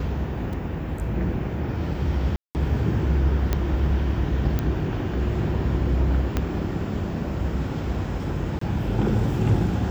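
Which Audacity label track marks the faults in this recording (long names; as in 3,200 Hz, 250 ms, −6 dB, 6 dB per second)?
0.530000	0.530000	drop-out 4 ms
2.360000	2.550000	drop-out 189 ms
3.530000	3.530000	click −9 dBFS
4.590000	4.590000	click −12 dBFS
6.370000	6.370000	click −10 dBFS
8.590000	8.610000	drop-out 24 ms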